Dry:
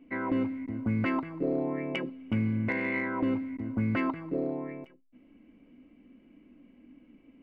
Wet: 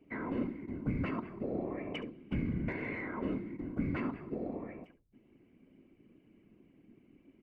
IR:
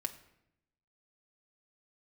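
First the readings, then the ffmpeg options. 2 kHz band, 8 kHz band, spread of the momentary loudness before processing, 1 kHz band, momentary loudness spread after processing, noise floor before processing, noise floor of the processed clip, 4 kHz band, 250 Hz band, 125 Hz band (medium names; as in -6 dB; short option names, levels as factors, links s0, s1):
-8.5 dB, no reading, 6 LU, -8.0 dB, 6 LU, -60 dBFS, -67 dBFS, -6.0 dB, -7.0 dB, -5.5 dB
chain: -filter_complex "[0:a]acrossover=split=340[s0][s1];[s1]acompressor=threshold=0.0224:ratio=2.5[s2];[s0][s2]amix=inputs=2:normalize=0,afftfilt=real='hypot(re,im)*cos(2*PI*random(0))':imag='hypot(re,im)*sin(2*PI*random(1))':win_size=512:overlap=0.75,aecho=1:1:70:0.158"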